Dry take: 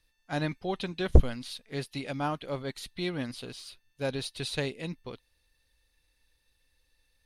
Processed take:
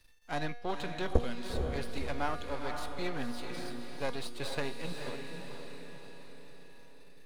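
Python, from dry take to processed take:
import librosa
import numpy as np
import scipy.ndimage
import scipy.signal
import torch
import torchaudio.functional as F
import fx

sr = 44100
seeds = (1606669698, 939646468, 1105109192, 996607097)

y = np.where(x < 0.0, 10.0 ** (-12.0 / 20.0) * x, x)
y = fx.dynamic_eq(y, sr, hz=1000.0, q=0.72, threshold_db=-50.0, ratio=4.0, max_db=6)
y = fx.comb_fb(y, sr, f0_hz=240.0, decay_s=0.7, harmonics='all', damping=0.0, mix_pct=70)
y = fx.echo_diffused(y, sr, ms=470, feedback_pct=42, wet_db=-7)
y = fx.band_squash(y, sr, depth_pct=40)
y = y * 10.0 ** (7.0 / 20.0)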